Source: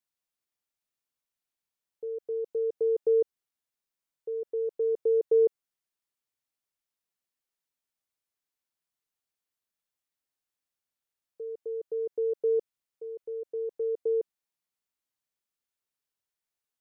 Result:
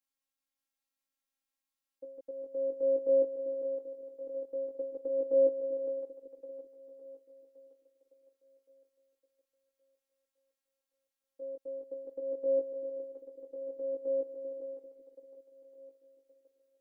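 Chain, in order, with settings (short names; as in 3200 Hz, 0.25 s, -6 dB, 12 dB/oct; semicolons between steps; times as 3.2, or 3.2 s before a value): split-band echo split 450 Hz, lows 0.392 s, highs 0.56 s, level -6.5 dB; chorus 0.14 Hz, delay 16 ms, depth 4.2 ms; robotiser 270 Hz; gain +3 dB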